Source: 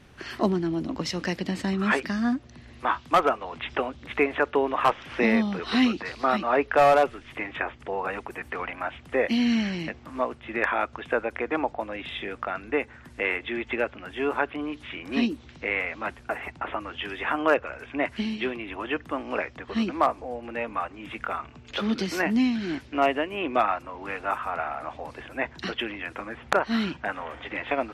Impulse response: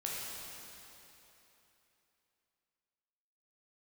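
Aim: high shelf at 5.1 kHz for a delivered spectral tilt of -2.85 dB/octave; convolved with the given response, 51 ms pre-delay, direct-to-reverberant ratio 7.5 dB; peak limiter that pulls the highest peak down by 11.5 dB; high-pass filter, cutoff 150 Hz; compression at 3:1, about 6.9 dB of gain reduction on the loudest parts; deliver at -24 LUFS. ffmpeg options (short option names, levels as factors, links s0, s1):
-filter_complex "[0:a]highpass=150,highshelf=f=5100:g=3,acompressor=threshold=0.0631:ratio=3,alimiter=limit=0.112:level=0:latency=1,asplit=2[s0][s1];[1:a]atrim=start_sample=2205,adelay=51[s2];[s1][s2]afir=irnorm=-1:irlink=0,volume=0.299[s3];[s0][s3]amix=inputs=2:normalize=0,volume=2.24"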